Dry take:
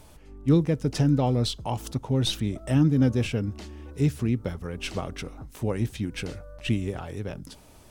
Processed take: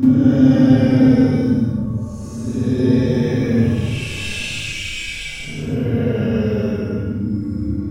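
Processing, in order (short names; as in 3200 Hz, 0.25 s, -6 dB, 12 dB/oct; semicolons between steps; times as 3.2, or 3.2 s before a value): Paulstretch 17×, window 0.05 s, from 3; Schroeder reverb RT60 0.39 s, combs from 27 ms, DRR -8 dB; gain -2 dB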